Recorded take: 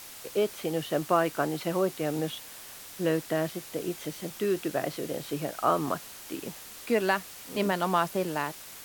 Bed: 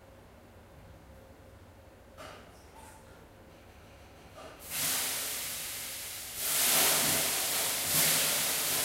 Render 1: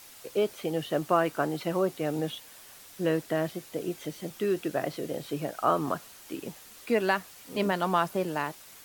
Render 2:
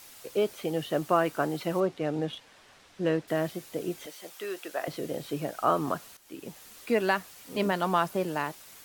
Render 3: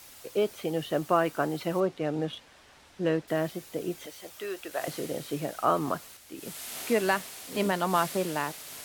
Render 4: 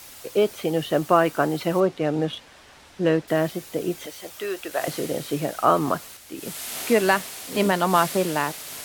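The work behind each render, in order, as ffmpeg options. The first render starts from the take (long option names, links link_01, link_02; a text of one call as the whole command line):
ffmpeg -i in.wav -af "afftdn=noise_reduction=6:noise_floor=-46" out.wav
ffmpeg -i in.wav -filter_complex "[0:a]asettb=1/sr,asplit=3[link_01][link_02][link_03];[link_01]atrim=end=1.804[link_04];[link_02]atrim=start=1.8:end=3.28,asetpts=PTS-STARTPTS,afade=type=in:duration=0.004:curve=qsin,afade=type=out:start_time=1.476:duration=0.004:curve=qsin,adynamicsmooth=sensitivity=7.5:basefreq=4200[link_05];[link_03]atrim=start=3.276[link_06];[link_04][link_05]acrossfade=duration=0.004:curve1=hsin:curve2=qsin[link_07];[link_07][link_06]acrossfade=duration=0.004:curve1=qsin:curve2=hsin,asettb=1/sr,asplit=3[link_08][link_09][link_10];[link_08]atrim=end=4.064[link_11];[link_09]atrim=start=4.06:end=4.88,asetpts=PTS-STARTPTS,afade=type=in:duration=0.004:curve=qsin,afade=type=out:start_time=0.816:duration=0.004:curve=qsin,highpass=610[link_12];[link_10]atrim=start=4.876[link_13];[link_11][link_12]acrossfade=duration=0.004:curve1=hsin:curve2=qsin[link_14];[link_14][link_13]acrossfade=duration=0.004:curve1=qsin:curve2=hsin,asplit=2[link_15][link_16];[link_15]atrim=end=6.17,asetpts=PTS-STARTPTS,afade=type=out:start_time=6.166:duration=0.004:curve=hsin:silence=0.237137[link_17];[link_16]atrim=start=6.17,asetpts=PTS-STARTPTS,afade=type=in:duration=0.48:silence=0.237137[link_18];[link_17][link_18]concat=n=2:v=0:a=1" out.wav
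ffmpeg -i in.wav -i bed.wav -filter_complex "[1:a]volume=-13.5dB[link_01];[0:a][link_01]amix=inputs=2:normalize=0" out.wav
ffmpeg -i in.wav -af "volume=6.5dB" out.wav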